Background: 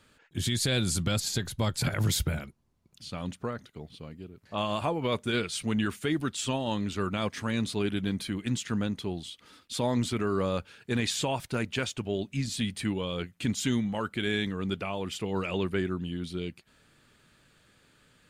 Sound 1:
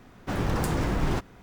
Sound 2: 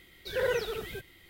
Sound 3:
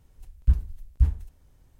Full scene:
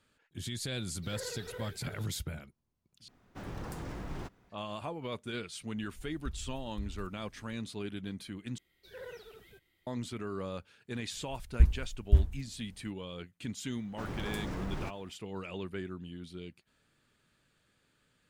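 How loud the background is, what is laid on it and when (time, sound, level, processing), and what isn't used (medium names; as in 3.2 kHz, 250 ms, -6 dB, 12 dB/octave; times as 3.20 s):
background -10 dB
0.77 s: add 2 -15 dB + chunks repeated in reverse 322 ms, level -2 dB
3.08 s: replace with 1 -14.5 dB
5.78 s: add 3 -3.5 dB + compression 4:1, threshold -34 dBFS
8.58 s: replace with 2 -17.5 dB
11.12 s: add 3 -2 dB
13.70 s: add 1 -12 dB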